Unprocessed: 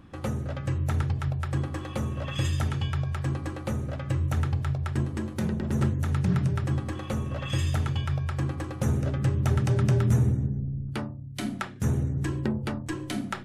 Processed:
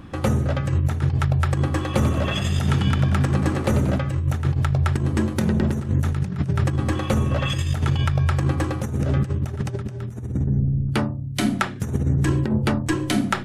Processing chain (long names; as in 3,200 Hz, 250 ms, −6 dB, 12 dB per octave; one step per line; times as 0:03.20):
compressor whose output falls as the input rises −28 dBFS, ratio −0.5
0:01.84–0:03.98: echo with shifted repeats 92 ms, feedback 52%, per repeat +57 Hz, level −8 dB
level +8 dB